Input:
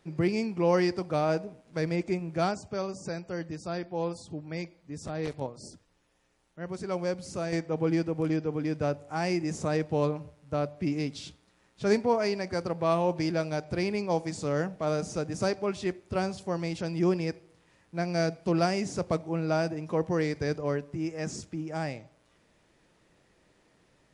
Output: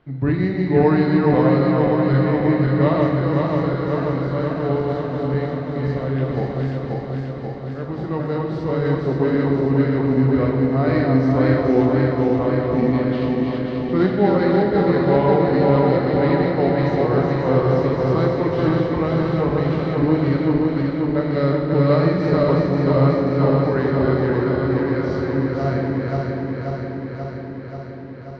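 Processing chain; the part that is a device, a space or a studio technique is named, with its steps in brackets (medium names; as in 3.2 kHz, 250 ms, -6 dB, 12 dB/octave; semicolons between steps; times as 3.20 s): backward echo that repeats 227 ms, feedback 83%, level -2.5 dB; distance through air 270 m; slowed and reverbed (tape speed -15%; reverberation RT60 2.1 s, pre-delay 6 ms, DRR 2 dB); trim +6.5 dB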